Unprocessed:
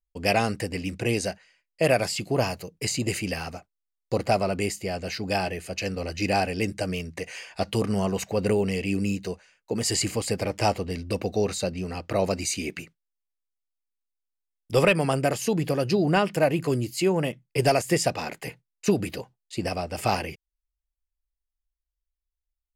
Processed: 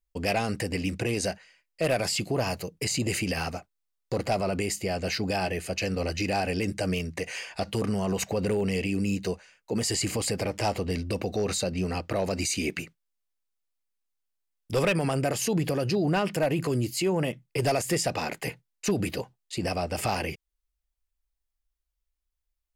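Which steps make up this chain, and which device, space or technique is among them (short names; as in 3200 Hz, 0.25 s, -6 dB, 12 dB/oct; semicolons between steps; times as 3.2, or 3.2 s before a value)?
clipper into limiter (hard clip -14.5 dBFS, distortion -22 dB; limiter -21.5 dBFS, peak gain reduction 7 dB); gain +3 dB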